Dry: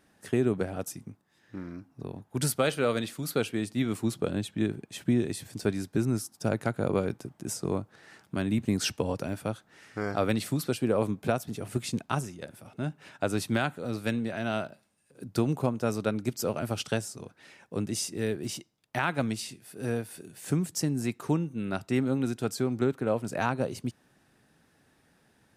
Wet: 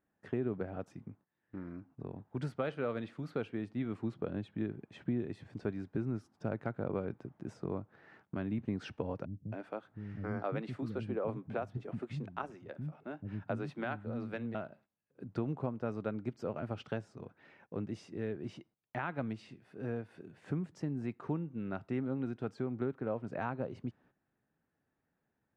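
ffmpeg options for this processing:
-filter_complex "[0:a]asettb=1/sr,asplit=3[a][b][c];[a]atrim=end=9.254[d];[b]atrim=start=9.25:end=14.55,asetpts=PTS-STARTPTS,afade=t=in:d=0.004:c=qsin,afade=t=out:st=5.296:d=0.004:c=qsin,acrossover=split=250[e][f];[f]adelay=270[g];[e][g]amix=inputs=2:normalize=0,atrim=end_sample=233730[h];[c]atrim=start=14.546[i];[d][h]acrossfade=d=0.004:c1=hsin:c2=qsin[j];[j][i]acrossfade=d=0.004:c1=qsin:c2=hsin,agate=range=-13dB:threshold=-56dB:ratio=16:detection=peak,acompressor=threshold=-35dB:ratio=1.5,lowpass=1.9k,volume=-4dB"

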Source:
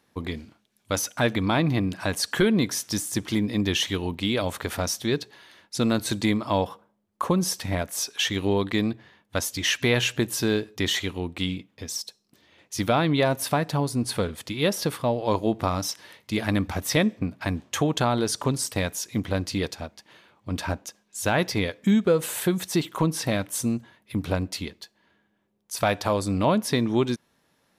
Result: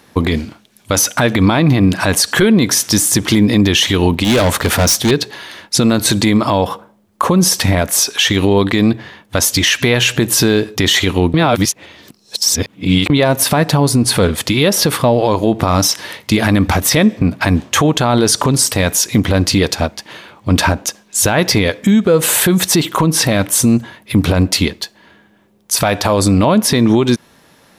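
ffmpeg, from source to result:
-filter_complex "[0:a]asettb=1/sr,asplit=3[a][b][c];[a]atrim=end=4.244[d];[b]atrim=start=4.24:end=5.11,asetpts=PTS-STARTPTS,afade=t=in:d=0.004:c=qsin,afade=t=out:st=0.866:d=0.004:c=qsin,asoftclip=type=hard:threshold=-28dB[e];[c]atrim=start=5.106[f];[d][e]acrossfade=d=0.004:c1=hsin:c2=qsin[g];[g][f]acrossfade=d=0.004:c1=qsin:c2=hsin,asplit=3[h][i][j];[h]atrim=end=11.342[k];[i]atrim=start=11.338:end=13.102,asetpts=PTS-STARTPTS,areverse[l];[j]atrim=start=13.098[m];[k][l]acrossfade=d=0.004:c1=hsin:c2=hsin[n];[n][m]acrossfade=d=0.004:c1=hsin:c2=hsin,acompressor=threshold=-23dB:ratio=6,alimiter=level_in=21dB:limit=-1dB:release=50:level=0:latency=1,volume=-2dB"

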